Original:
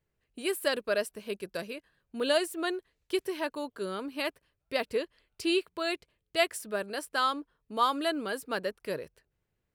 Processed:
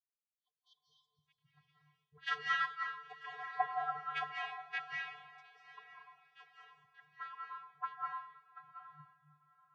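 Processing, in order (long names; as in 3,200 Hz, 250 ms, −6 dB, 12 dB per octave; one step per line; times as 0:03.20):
source passing by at 0:03.32, 6 m/s, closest 4.3 metres
brick-wall band-stop 260–850 Hz
harmonic generator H 2 −6 dB, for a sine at −21.5 dBFS
LFO wah 3.2 Hz 360–2,100 Hz, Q 4.5
channel vocoder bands 16, square 149 Hz
healed spectral selection 0:00.34–0:01.24, 1,200–2,900 Hz before
feedback delay with all-pass diffusion 913 ms, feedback 47%, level −8.5 dB
convolution reverb RT60 0.80 s, pre-delay 152 ms, DRR −2.5 dB
multiband upward and downward expander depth 100%
level +6 dB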